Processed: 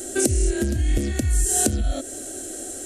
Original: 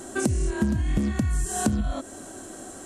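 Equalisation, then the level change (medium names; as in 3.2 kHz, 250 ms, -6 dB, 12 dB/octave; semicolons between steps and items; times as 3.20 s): treble shelf 7.7 kHz +9 dB; static phaser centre 420 Hz, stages 4; +6.0 dB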